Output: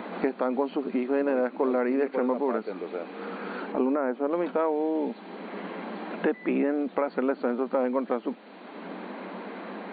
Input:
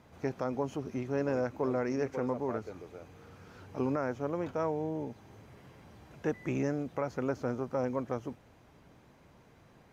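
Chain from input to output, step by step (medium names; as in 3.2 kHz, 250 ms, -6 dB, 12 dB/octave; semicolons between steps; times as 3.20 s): 3.72–4.31 s: treble shelf 2.3 kHz -11.5 dB; FFT band-pass 180–4600 Hz; three bands compressed up and down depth 70%; trim +7 dB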